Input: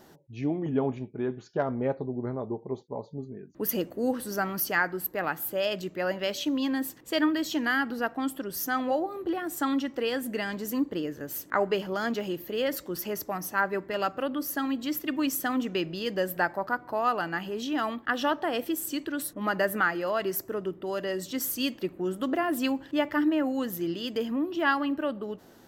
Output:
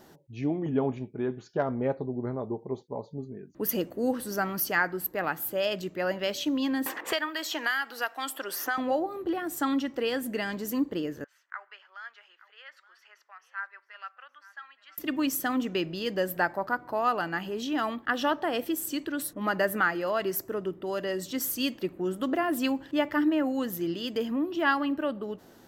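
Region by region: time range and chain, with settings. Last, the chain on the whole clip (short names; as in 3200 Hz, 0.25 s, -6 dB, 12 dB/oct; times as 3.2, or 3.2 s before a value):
6.86–8.78 HPF 770 Hz + three-band squash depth 100%
11.24–14.98 ladder high-pass 1200 Hz, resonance 35% + tape spacing loss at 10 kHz 29 dB + echo 0.872 s -18.5 dB
whole clip: dry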